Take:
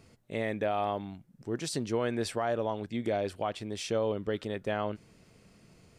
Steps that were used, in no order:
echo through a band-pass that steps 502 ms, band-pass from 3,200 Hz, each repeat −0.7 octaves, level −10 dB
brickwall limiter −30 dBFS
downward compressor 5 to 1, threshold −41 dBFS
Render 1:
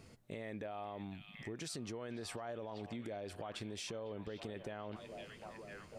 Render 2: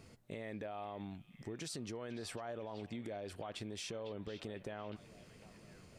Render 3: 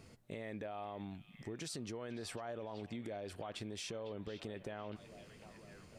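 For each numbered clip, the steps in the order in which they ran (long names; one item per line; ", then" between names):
echo through a band-pass that steps, then brickwall limiter, then downward compressor
brickwall limiter, then downward compressor, then echo through a band-pass that steps
brickwall limiter, then echo through a band-pass that steps, then downward compressor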